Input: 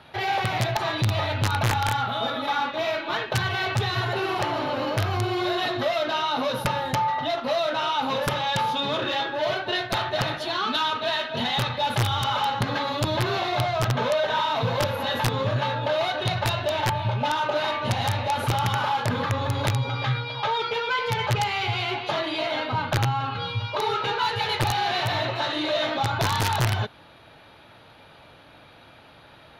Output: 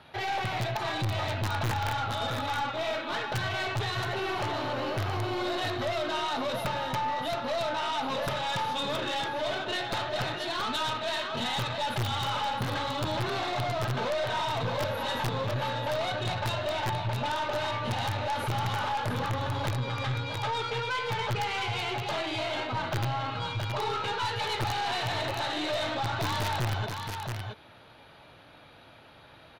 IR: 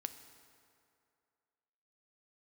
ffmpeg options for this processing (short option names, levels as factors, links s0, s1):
-filter_complex "[0:a]asplit=2[s0][s1];[s1]aecho=0:1:672:0.398[s2];[s0][s2]amix=inputs=2:normalize=0,aeval=exprs='(tanh(12.6*val(0)+0.3)-tanh(0.3))/12.6':c=same,volume=0.708"